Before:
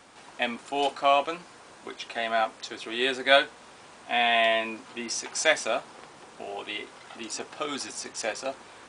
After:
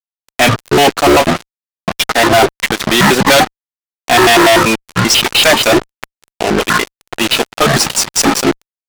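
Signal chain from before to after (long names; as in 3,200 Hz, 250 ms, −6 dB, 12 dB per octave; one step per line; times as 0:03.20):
pitch shifter gated in a rhythm −11.5 semitones, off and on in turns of 97 ms
fuzz pedal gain 40 dB, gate −38 dBFS
transient designer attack 0 dB, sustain −4 dB
level +7.5 dB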